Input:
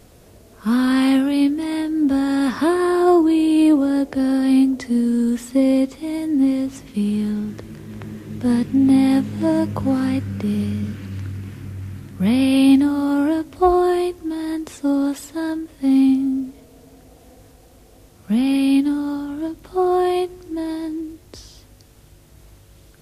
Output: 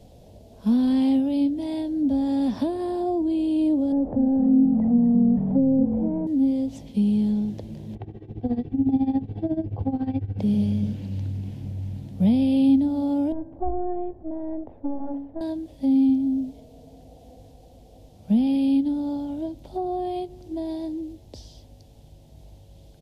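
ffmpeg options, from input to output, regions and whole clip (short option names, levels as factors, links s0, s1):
-filter_complex "[0:a]asettb=1/sr,asplit=3[s0][s1][s2];[s0]atrim=end=3.924[s3];[s1]atrim=start=3.92:end=6.27,asetpts=PTS-STARTPTS,afade=t=in:d=0.004:c=qsin,afade=t=out:st=2.346:d=0.004:c=qsin,aeval=exprs='val(0)+0.5*0.0562*sgn(val(0))':c=same,lowpass=f=1300:w=0.5412,lowpass=f=1300:w=1.3066,asplit=5[s4][s5][s6][s7][s8];[s5]adelay=232,afreqshift=-43,volume=0.355[s9];[s6]adelay=464,afreqshift=-86,volume=0.12[s10];[s7]adelay=696,afreqshift=-129,volume=0.0412[s11];[s8]adelay=928,afreqshift=-172,volume=0.014[s12];[s4][s9][s10][s11][s12]amix=inputs=5:normalize=0,atrim=end_sample=103635[s13];[s2]atrim=start=6.266[s14];[s3][s13]acrossfade=d=0.004:c1=hsin:c2=qsin[s15];[s15][s14]acrossfade=d=0.004:c1=qsin:c2=hsin,asettb=1/sr,asplit=3[s16][s17][s18];[s16]atrim=end=7.954[s19];[s17]atrim=start=7.95:end=10.39,asetpts=PTS-STARTPTS,afade=t=in:d=0.004:c=qsin,afade=t=out:st=2.436:d=0.004:c=qsin,lowpass=2200,aecho=1:1:2.6:0.79,atrim=end_sample=107604,tremolo=f=14:d=0.84[s20];[s18]atrim=start=10.386[s21];[s19][s20]acrossfade=d=0.004:c1=hsin:c2=qsin[s22];[s22][s21]acrossfade=d=0.004:c1=qsin:c2=hsin,asettb=1/sr,asplit=3[s23][s24][s25];[s23]atrim=end=13.324[s26];[s24]atrim=start=13.32:end=15.41,asetpts=PTS-STARTPTS,afade=t=in:d=0.004:c=qsin,afade=t=out:st=2.086:d=0.004:c=qsin,aeval=exprs='if(lt(val(0),0),0.447*val(0),val(0))':c=same,lowpass=f=1500:w=0.5412,lowpass=f=1500:w=1.3066,bandreject=f=46.57:t=h:w=4,bandreject=f=93.14:t=h:w=4,bandreject=f=139.71:t=h:w=4,bandreject=f=186.28:t=h:w=4,bandreject=f=232.85:t=h:w=4,bandreject=f=279.42:t=h:w=4,bandreject=f=325.99:t=h:w=4,bandreject=f=372.56:t=h:w=4,bandreject=f=419.13:t=h:w=4,bandreject=f=465.7:t=h:w=4,bandreject=f=512.27:t=h:w=4,bandreject=f=558.84:t=h:w=4,bandreject=f=605.41:t=h:w=4,bandreject=f=651.98:t=h:w=4,bandreject=f=698.55:t=h:w=4,bandreject=f=745.12:t=h:w=4,bandreject=f=791.69:t=h:w=4,bandreject=f=838.26:t=h:w=4,bandreject=f=884.83:t=h:w=4,bandreject=f=931.4:t=h:w=4,bandreject=f=977.97:t=h:w=4,bandreject=f=1024.54:t=h:w=4,bandreject=f=1071.11:t=h:w=4,bandreject=f=1117.68:t=h:w=4,bandreject=f=1164.25:t=h:w=4,bandreject=f=1210.82:t=h:w=4,bandreject=f=1257.39:t=h:w=4,bandreject=f=1303.96:t=h:w=4,bandreject=f=1350.53:t=h:w=4,bandreject=f=1397.1:t=h:w=4,bandreject=f=1443.67:t=h:w=4,bandreject=f=1490.24:t=h:w=4,bandreject=f=1536.81:t=h:w=4,bandreject=f=1583.38:t=h:w=4,bandreject=f=1629.95:t=h:w=4,bandreject=f=1676.52:t=h:w=4,bandreject=f=1723.09:t=h:w=4,bandreject=f=1769.66:t=h:w=4,bandreject=f=1816.23:t=h:w=4[s27];[s25]atrim=start=15.406[s28];[s26][s27]acrossfade=d=0.004:c1=hsin:c2=qsin[s29];[s29][s28]acrossfade=d=0.004:c1=qsin:c2=hsin,firequalizer=gain_entry='entry(220,0);entry(370,-6);entry(570,2);entry(820,0);entry(1200,-20);entry(3300,-4);entry(8300,-12)':delay=0.05:min_phase=1,acrossover=split=290[s30][s31];[s31]acompressor=threshold=0.0316:ratio=4[s32];[s30][s32]amix=inputs=2:normalize=0"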